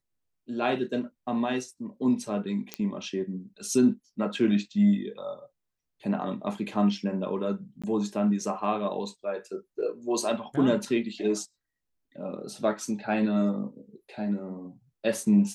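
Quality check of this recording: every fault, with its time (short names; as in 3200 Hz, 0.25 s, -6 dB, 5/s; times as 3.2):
2.74 pop -15 dBFS
7.82–7.84 gap 16 ms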